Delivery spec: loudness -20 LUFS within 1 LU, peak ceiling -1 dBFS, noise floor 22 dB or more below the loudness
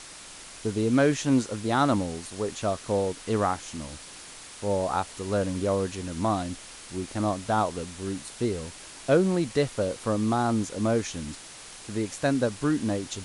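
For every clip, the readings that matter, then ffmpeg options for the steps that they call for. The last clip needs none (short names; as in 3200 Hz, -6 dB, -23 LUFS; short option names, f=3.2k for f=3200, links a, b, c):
noise floor -45 dBFS; noise floor target -50 dBFS; loudness -27.5 LUFS; peak -9.0 dBFS; loudness target -20.0 LUFS
-> -af "afftdn=nr=6:nf=-45"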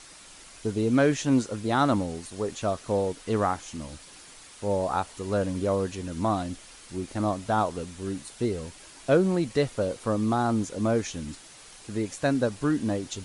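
noise floor -49 dBFS; noise floor target -50 dBFS
-> -af "afftdn=nr=6:nf=-49"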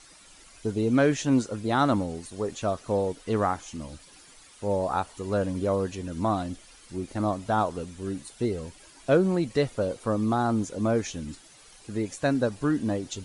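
noise floor -53 dBFS; loudness -27.5 LUFS; peak -9.0 dBFS; loudness target -20.0 LUFS
-> -af "volume=7.5dB"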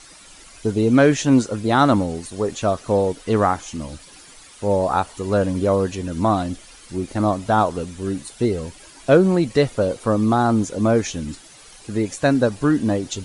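loudness -20.0 LUFS; peak -1.5 dBFS; noise floor -45 dBFS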